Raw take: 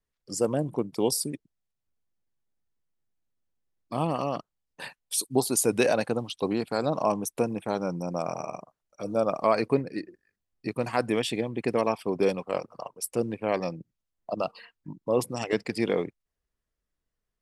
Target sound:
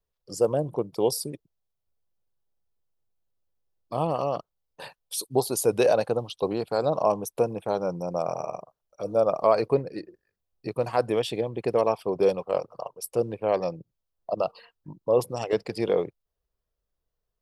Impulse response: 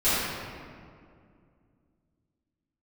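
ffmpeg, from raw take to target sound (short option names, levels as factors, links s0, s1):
-af "equalizer=f=250:t=o:w=1:g=-9,equalizer=f=500:t=o:w=1:g=4,equalizer=f=2000:t=o:w=1:g=-9,equalizer=f=8000:t=o:w=1:g=-8,volume=1.33"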